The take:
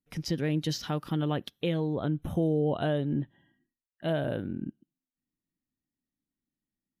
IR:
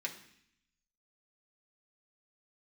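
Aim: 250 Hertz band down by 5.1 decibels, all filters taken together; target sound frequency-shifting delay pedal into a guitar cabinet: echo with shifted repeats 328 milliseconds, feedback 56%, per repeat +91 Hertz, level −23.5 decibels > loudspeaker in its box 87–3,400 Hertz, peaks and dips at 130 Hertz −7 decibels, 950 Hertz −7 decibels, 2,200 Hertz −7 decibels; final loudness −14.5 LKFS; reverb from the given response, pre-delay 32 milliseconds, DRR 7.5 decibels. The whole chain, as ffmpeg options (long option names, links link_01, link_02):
-filter_complex "[0:a]equalizer=frequency=250:width_type=o:gain=-6.5,asplit=2[link_01][link_02];[1:a]atrim=start_sample=2205,adelay=32[link_03];[link_02][link_03]afir=irnorm=-1:irlink=0,volume=-8.5dB[link_04];[link_01][link_04]amix=inputs=2:normalize=0,asplit=5[link_05][link_06][link_07][link_08][link_09];[link_06]adelay=328,afreqshift=91,volume=-23.5dB[link_10];[link_07]adelay=656,afreqshift=182,volume=-28.5dB[link_11];[link_08]adelay=984,afreqshift=273,volume=-33.6dB[link_12];[link_09]adelay=1312,afreqshift=364,volume=-38.6dB[link_13];[link_05][link_10][link_11][link_12][link_13]amix=inputs=5:normalize=0,highpass=87,equalizer=frequency=130:width_type=q:width=4:gain=-7,equalizer=frequency=950:width_type=q:width=4:gain=-7,equalizer=frequency=2200:width_type=q:width=4:gain=-7,lowpass=frequency=3400:width=0.5412,lowpass=frequency=3400:width=1.3066,volume=20dB"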